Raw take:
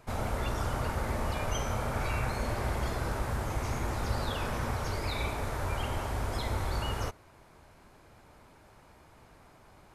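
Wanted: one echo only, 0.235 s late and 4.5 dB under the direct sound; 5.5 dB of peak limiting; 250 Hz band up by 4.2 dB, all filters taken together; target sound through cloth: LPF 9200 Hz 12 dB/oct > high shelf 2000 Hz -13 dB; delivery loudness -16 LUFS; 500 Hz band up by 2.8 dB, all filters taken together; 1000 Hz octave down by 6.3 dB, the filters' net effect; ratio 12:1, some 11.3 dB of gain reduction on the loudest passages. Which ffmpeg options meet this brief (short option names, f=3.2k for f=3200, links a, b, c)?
-af "equalizer=f=250:t=o:g=4.5,equalizer=f=500:t=o:g=5.5,equalizer=f=1k:t=o:g=-7.5,acompressor=threshold=-38dB:ratio=12,alimiter=level_in=10.5dB:limit=-24dB:level=0:latency=1,volume=-10.5dB,lowpass=9.2k,highshelf=f=2k:g=-13,aecho=1:1:235:0.596,volume=28.5dB"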